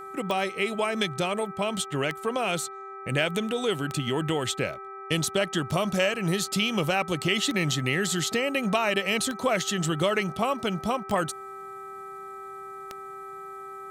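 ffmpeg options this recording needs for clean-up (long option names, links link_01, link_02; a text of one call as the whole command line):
ffmpeg -i in.wav -af "adeclick=threshold=4,bandreject=frequency=391.3:width_type=h:width=4,bandreject=frequency=782.6:width_type=h:width=4,bandreject=frequency=1173.9:width_type=h:width=4,bandreject=frequency=1565.2:width_type=h:width=4,bandreject=frequency=1956.5:width_type=h:width=4,bandreject=frequency=2347.8:width_type=h:width=4,bandreject=frequency=1300:width=30" out.wav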